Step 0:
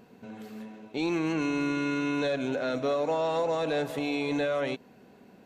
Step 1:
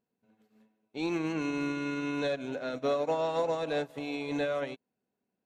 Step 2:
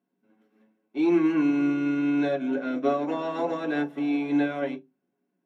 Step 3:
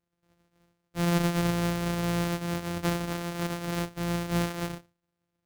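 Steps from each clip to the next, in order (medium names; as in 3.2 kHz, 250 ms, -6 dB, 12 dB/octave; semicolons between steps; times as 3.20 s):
upward expansion 2.5:1, over -46 dBFS
reverberation RT60 0.15 s, pre-delay 3 ms, DRR -1 dB; trim -6 dB
sorted samples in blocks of 256 samples; band-stop 940 Hz, Q 10; trim -4 dB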